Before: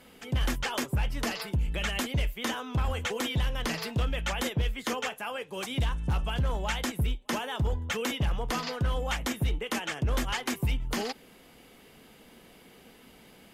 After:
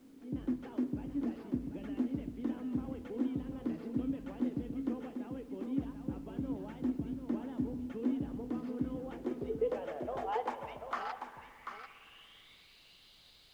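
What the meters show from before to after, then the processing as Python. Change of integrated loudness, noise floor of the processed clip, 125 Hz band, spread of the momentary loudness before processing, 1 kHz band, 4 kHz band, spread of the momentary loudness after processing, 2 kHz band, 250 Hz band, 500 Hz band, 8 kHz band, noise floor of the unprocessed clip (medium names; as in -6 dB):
-7.5 dB, -61 dBFS, -15.5 dB, 3 LU, -7.5 dB, under -20 dB, 14 LU, -18.0 dB, +1.0 dB, -4.5 dB, under -25 dB, -55 dBFS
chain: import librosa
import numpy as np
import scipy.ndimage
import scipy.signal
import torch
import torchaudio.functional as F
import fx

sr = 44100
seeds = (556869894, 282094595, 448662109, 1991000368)

p1 = fx.filter_sweep_bandpass(x, sr, from_hz=280.0, to_hz=4100.0, start_s=8.89, end_s=12.67, q=7.2)
p2 = fx.dmg_noise_colour(p1, sr, seeds[0], colour='pink', level_db=-78.0)
p3 = p2 + fx.echo_single(p2, sr, ms=740, db=-7.0, dry=0)
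p4 = fx.rev_spring(p3, sr, rt60_s=2.3, pass_ms=(56,), chirp_ms=60, drr_db=12.0)
y = F.gain(torch.from_numpy(p4), 8.0).numpy()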